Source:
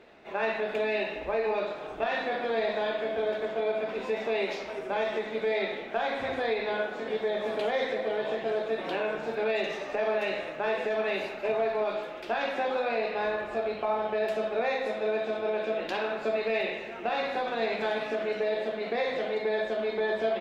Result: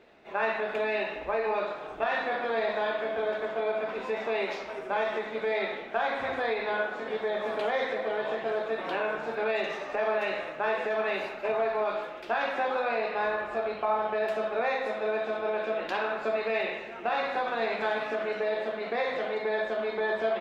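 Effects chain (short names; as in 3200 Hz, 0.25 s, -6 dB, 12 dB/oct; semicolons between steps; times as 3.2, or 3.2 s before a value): dynamic EQ 1200 Hz, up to +8 dB, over -45 dBFS, Q 0.96; gain -3 dB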